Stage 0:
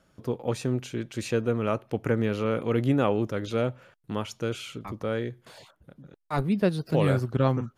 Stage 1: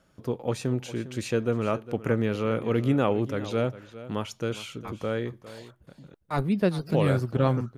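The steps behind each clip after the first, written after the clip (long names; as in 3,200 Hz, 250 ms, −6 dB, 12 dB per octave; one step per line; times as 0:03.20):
single-tap delay 406 ms −15.5 dB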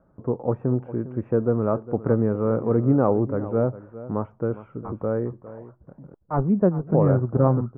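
inverse Chebyshev low-pass filter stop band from 3,900 Hz, stop band 60 dB
level +4.5 dB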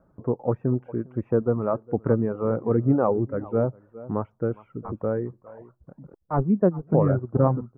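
reverb reduction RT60 0.93 s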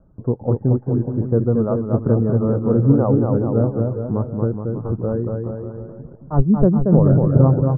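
Butterworth low-pass 1,800 Hz 48 dB per octave
spectral tilt −3.5 dB per octave
on a send: bouncing-ball delay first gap 230 ms, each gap 0.85×, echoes 5
on the sum: level −2 dB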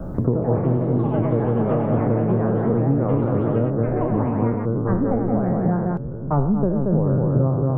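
peak hold with a decay on every bin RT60 0.82 s
delay with pitch and tempo change per echo 144 ms, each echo +5 semitones, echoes 3, each echo −6 dB
multiband upward and downward compressor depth 100%
level −6 dB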